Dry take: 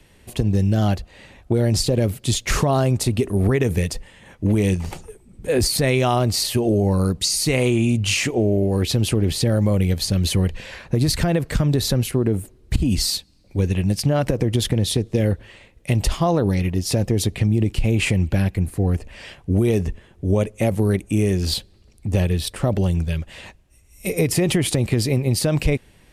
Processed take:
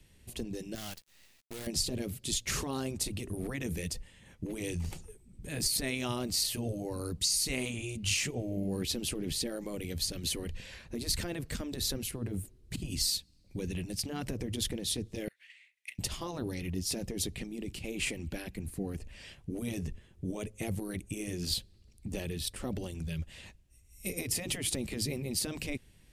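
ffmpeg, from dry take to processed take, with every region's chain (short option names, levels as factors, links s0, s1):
-filter_complex "[0:a]asettb=1/sr,asplit=3[s0][s1][s2];[s0]atrim=end=0.754[s3];[s1]atrim=start=0.75:end=1.67,asetpts=PTS-STARTPTS,afade=t=in:d=0.004:c=qsin,afade=t=out:st=0.916:d=0.004:c=qsin,highpass=f=1400:p=1,acrusher=bits=6:dc=4:mix=0:aa=0.000001[s4];[s2]atrim=start=1.666[s5];[s3][s4]acrossfade=d=0.004:c1=hsin:c2=qsin[s6];[s6][s5]acrossfade=d=0.004:c1=qsin:c2=hsin,asettb=1/sr,asplit=3[s7][s8][s9];[s7]atrim=end=15.284[s10];[s8]atrim=start=15.28:end=15.99,asetpts=PTS-STARTPTS,afade=t=in:d=0.004:c=qsin,afade=t=out:st=0.706:d=0.004:c=qsin,agate=range=0.398:threshold=0.00631:ratio=16:release=100:detection=peak,acompressor=threshold=0.0251:ratio=6:attack=3.2:release=140:knee=1:detection=peak,highpass=f=2100:t=q:w=3.9[s11];[s9]atrim=start=15.986[s12];[s10][s11]acrossfade=d=0.004:c1=hsin:c2=qsin[s13];[s13][s12]acrossfade=d=0.004:c1=qsin:c2=hsin,afftfilt=real='re*lt(hypot(re,im),0.708)':imag='im*lt(hypot(re,im),0.708)':win_size=1024:overlap=0.75,equalizer=f=840:t=o:w=2.9:g=-10,volume=0.473"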